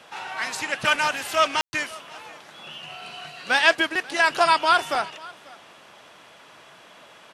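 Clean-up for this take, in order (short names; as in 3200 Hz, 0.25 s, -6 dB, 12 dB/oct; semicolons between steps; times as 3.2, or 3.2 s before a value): room tone fill 1.61–1.73; inverse comb 0.54 s -22 dB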